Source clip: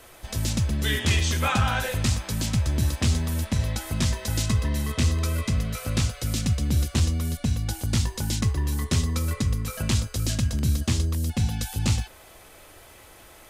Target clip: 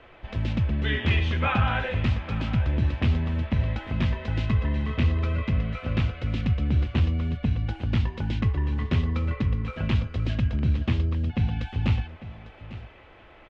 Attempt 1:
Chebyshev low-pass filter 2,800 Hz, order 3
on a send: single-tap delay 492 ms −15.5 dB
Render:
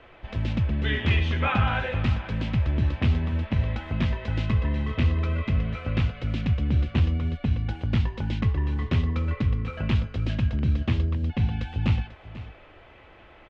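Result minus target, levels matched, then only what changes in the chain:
echo 358 ms early
change: single-tap delay 850 ms −15.5 dB

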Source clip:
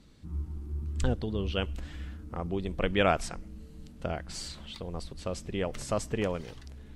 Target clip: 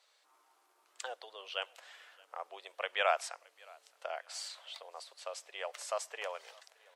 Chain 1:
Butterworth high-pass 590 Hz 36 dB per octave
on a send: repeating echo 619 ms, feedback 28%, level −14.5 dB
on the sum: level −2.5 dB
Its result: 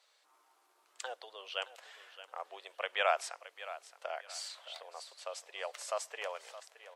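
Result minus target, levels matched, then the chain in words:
echo-to-direct +11 dB
Butterworth high-pass 590 Hz 36 dB per octave
on a send: repeating echo 619 ms, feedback 28%, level −25.5 dB
on the sum: level −2.5 dB

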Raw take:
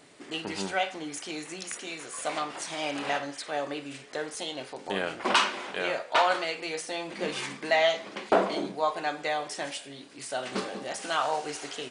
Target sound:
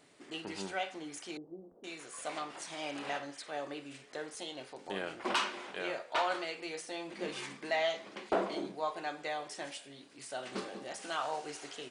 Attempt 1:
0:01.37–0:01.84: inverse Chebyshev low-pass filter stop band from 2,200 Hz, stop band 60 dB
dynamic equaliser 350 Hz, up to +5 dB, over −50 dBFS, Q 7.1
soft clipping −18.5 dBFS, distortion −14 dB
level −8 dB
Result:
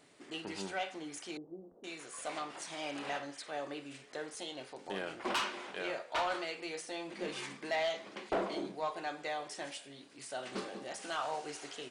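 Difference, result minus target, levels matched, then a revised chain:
soft clipping: distortion +11 dB
0:01.37–0:01.84: inverse Chebyshev low-pass filter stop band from 2,200 Hz, stop band 60 dB
dynamic equaliser 350 Hz, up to +5 dB, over −50 dBFS, Q 7.1
soft clipping −10.5 dBFS, distortion −25 dB
level −8 dB

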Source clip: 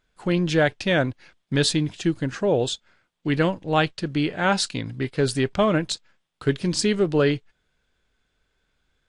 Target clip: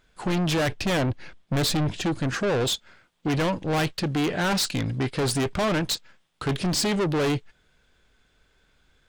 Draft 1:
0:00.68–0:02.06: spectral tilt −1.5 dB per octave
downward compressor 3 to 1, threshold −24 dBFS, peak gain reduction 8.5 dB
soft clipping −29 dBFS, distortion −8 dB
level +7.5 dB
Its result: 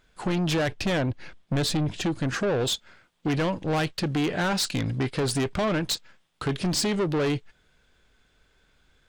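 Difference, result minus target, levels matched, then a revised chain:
downward compressor: peak gain reduction +8.5 dB
0:00.68–0:02.06: spectral tilt −1.5 dB per octave
soft clipping −29 dBFS, distortion −5 dB
level +7.5 dB

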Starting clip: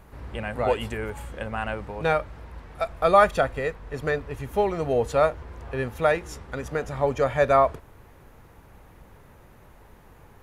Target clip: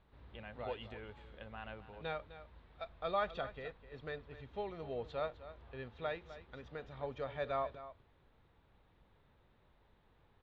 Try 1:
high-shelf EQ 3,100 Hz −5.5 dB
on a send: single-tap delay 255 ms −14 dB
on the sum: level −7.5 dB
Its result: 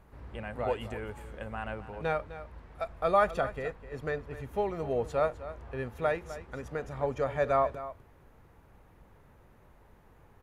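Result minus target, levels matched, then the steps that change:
4,000 Hz band −9.0 dB
add first: transistor ladder low-pass 4,100 Hz, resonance 65%

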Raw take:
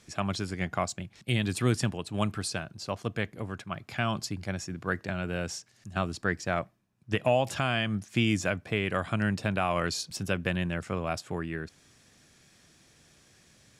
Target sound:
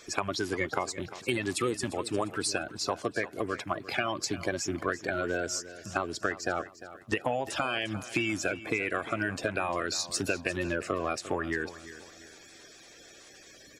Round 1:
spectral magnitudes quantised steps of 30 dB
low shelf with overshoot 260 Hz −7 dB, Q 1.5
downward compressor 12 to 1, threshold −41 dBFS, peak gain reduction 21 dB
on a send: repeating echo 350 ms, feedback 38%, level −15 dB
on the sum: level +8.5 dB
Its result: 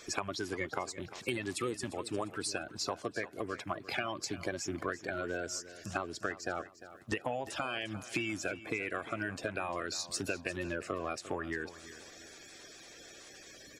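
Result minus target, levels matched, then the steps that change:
downward compressor: peak gain reduction +6 dB
change: downward compressor 12 to 1, threshold −34.5 dBFS, peak gain reduction 15 dB

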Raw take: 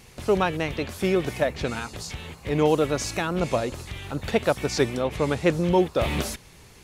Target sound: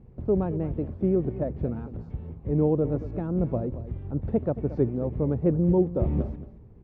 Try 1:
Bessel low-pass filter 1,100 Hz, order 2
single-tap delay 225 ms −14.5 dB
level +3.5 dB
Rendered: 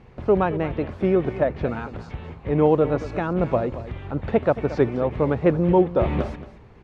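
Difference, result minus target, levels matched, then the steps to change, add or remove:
1,000 Hz band +9.5 dB
change: Bessel low-pass filter 280 Hz, order 2

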